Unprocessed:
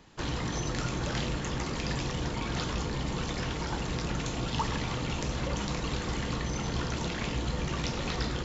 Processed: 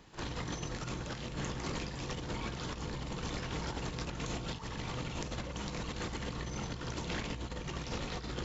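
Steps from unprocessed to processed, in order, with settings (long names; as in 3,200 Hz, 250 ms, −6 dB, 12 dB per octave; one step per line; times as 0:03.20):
compressor whose output falls as the input rises −34 dBFS, ratio −0.5
echo ahead of the sound 48 ms −13.5 dB
level −4.5 dB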